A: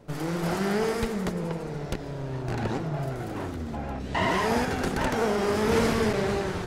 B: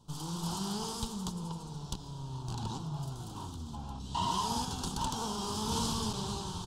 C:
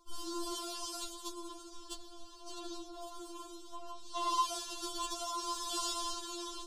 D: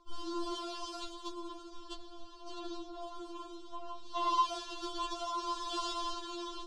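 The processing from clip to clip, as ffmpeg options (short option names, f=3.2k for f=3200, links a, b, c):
-af "firequalizer=gain_entry='entry(170,0);entry(290,-7);entry(600,-16);entry(930,5);entry(2000,-27);entry(3100,6);entry(4900,7);entry(8300,9);entry(12000,2)':delay=0.05:min_phase=1,volume=-6.5dB"
-af "afftfilt=real='re*4*eq(mod(b,16),0)':imag='im*4*eq(mod(b,16),0)':win_size=2048:overlap=0.75,volume=1dB"
-af "lowpass=3.7k,volume=2.5dB"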